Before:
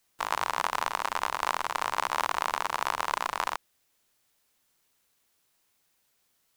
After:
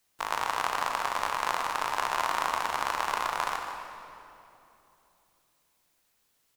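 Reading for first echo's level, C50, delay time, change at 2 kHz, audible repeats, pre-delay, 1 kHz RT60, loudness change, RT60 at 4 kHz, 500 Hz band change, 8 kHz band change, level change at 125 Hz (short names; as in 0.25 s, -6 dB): -10.5 dB, 3.5 dB, 0.152 s, +0.5 dB, 1, 18 ms, 2.7 s, 0.0 dB, 2.1 s, +0.5 dB, 0.0 dB, +1.0 dB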